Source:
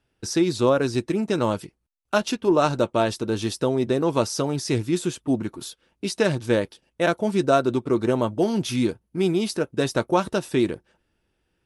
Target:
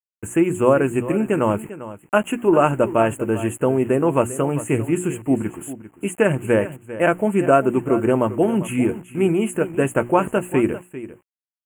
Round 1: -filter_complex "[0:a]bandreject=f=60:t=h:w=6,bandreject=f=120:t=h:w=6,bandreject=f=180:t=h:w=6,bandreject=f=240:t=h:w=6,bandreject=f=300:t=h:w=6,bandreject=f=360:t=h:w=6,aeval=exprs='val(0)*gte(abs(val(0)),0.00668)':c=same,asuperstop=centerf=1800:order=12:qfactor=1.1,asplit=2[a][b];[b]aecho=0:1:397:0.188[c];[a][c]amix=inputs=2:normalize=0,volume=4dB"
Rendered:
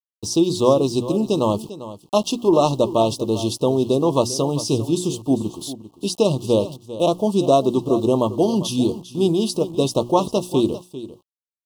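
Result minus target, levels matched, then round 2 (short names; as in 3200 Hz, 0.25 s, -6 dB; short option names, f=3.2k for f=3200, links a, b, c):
2000 Hz band -16.0 dB
-filter_complex "[0:a]bandreject=f=60:t=h:w=6,bandreject=f=120:t=h:w=6,bandreject=f=180:t=h:w=6,bandreject=f=240:t=h:w=6,bandreject=f=300:t=h:w=6,bandreject=f=360:t=h:w=6,aeval=exprs='val(0)*gte(abs(val(0)),0.00668)':c=same,asuperstop=centerf=4600:order=12:qfactor=1.1,asplit=2[a][b];[b]aecho=0:1:397:0.188[c];[a][c]amix=inputs=2:normalize=0,volume=4dB"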